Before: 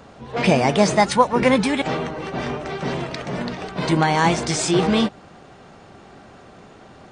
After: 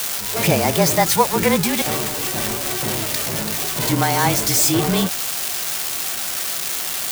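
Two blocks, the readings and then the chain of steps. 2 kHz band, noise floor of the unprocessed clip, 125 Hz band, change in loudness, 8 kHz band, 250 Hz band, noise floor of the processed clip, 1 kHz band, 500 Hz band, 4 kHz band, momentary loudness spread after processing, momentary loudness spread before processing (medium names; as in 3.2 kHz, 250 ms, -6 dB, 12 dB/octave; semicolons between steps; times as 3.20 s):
+1.0 dB, -46 dBFS, +1.5 dB, +2.0 dB, +11.5 dB, -1.5 dB, -25 dBFS, -1.0 dB, -1.0 dB, +5.5 dB, 6 LU, 11 LU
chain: zero-crossing glitches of -10 dBFS; frequency shift -28 Hz; trim -1 dB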